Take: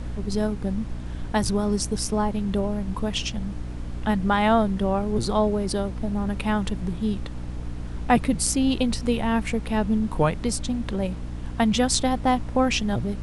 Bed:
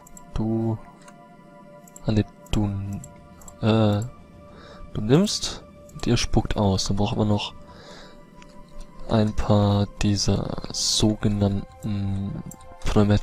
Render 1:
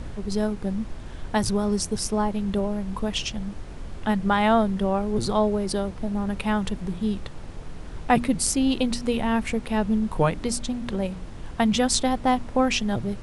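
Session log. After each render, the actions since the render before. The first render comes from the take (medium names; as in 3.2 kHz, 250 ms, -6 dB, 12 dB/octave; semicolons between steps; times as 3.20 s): de-hum 60 Hz, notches 5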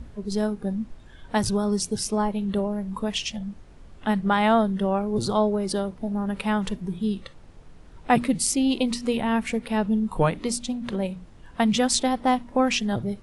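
noise print and reduce 11 dB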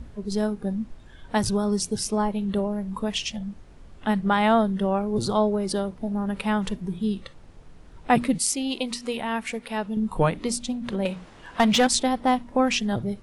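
8.38–9.97 s: bass shelf 330 Hz -11 dB; 11.05–11.87 s: overdrive pedal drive 17 dB, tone 4.4 kHz, clips at -10.5 dBFS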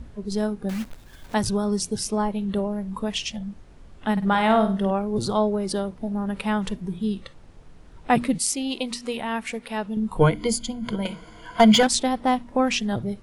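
0.69–1.35 s: block-companded coder 3-bit; 4.12–4.91 s: flutter echo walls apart 8.7 m, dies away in 0.37 s; 10.20–11.83 s: rippled EQ curve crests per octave 1.8, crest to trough 15 dB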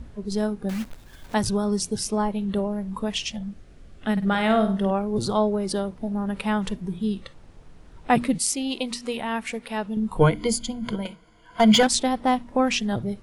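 3.50–4.68 s: peaking EQ 940 Hz -12 dB 0.33 oct; 10.92–11.73 s: dip -11.5 dB, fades 0.25 s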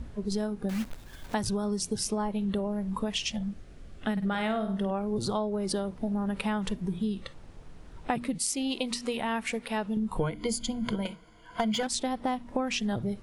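compression 10:1, threshold -26 dBFS, peak gain reduction 14.5 dB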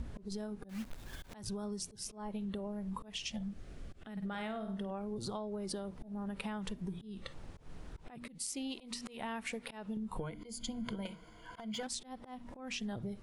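compression 8:1, threshold -37 dBFS, peak gain reduction 13.5 dB; slow attack 152 ms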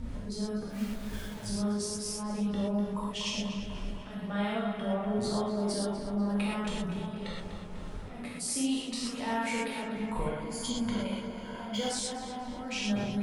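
tape echo 246 ms, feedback 78%, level -7 dB, low-pass 3.1 kHz; gated-style reverb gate 150 ms flat, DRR -6.5 dB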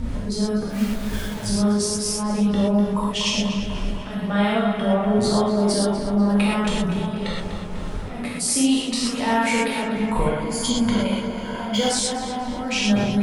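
trim +11.5 dB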